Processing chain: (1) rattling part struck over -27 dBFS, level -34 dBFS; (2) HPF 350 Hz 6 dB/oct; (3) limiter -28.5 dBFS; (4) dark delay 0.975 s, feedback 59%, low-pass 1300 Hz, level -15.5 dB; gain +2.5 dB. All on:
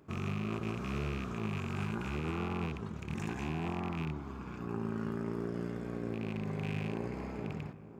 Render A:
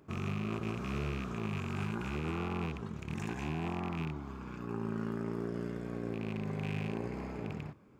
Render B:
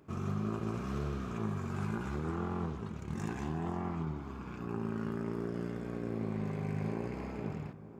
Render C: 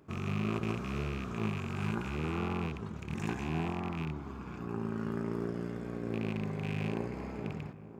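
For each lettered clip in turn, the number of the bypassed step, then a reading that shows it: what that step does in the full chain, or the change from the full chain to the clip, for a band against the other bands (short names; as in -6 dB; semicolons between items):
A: 4, echo-to-direct -17.5 dB to none; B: 1, 4 kHz band -6.5 dB; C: 3, crest factor change +3.0 dB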